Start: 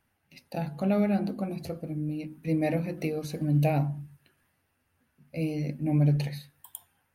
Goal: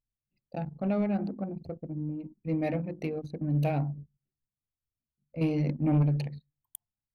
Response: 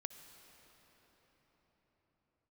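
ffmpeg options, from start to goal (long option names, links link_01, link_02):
-filter_complex "[0:a]asettb=1/sr,asplit=3[link_01][link_02][link_03];[link_01]atrim=end=5.414[link_04];[link_02]atrim=start=5.41:end=6.03,asetpts=PTS-STARTPTS,afade=type=in:duration=0.004:curve=qsin,afade=type=out:start_time=0.616:duration=0.004:curve=qsin,acontrast=56[link_05];[link_03]atrim=start=6.026[link_06];[link_04][link_05]acrossfade=duration=0.004:curve1=hsin:curve2=qsin[link_07];[link_07][link_06]acrossfade=duration=0.004:curve1=qsin:curve2=hsin,anlmdn=6.31,asoftclip=type=tanh:threshold=-16.5dB,volume=-2dB"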